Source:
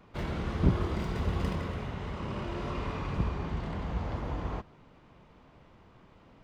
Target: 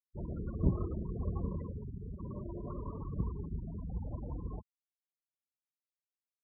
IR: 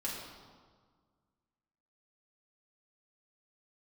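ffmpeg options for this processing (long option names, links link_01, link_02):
-filter_complex "[0:a]asplit=2[link_01][link_02];[link_02]asetrate=22050,aresample=44100,atempo=2,volume=-17dB[link_03];[link_01][link_03]amix=inputs=2:normalize=0,afftfilt=real='re*gte(hypot(re,im),0.0447)':imag='im*gte(hypot(re,im),0.0447)':win_size=1024:overlap=0.75,volume=-5dB"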